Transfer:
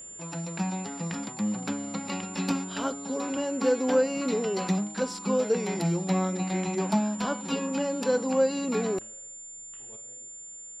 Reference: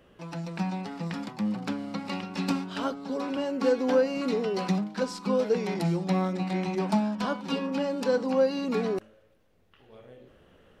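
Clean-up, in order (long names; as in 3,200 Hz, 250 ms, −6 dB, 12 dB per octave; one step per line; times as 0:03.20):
notch filter 7,200 Hz, Q 30
level 0 dB, from 0:09.96 +10 dB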